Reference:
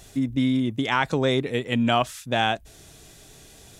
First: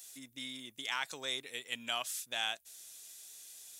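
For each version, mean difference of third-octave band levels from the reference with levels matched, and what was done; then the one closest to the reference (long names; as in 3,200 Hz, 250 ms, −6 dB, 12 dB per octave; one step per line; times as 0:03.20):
10.5 dB: first difference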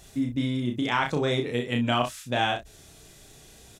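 2.0 dB: ambience of single reflections 33 ms −4 dB, 62 ms −11.5 dB
level −4 dB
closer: second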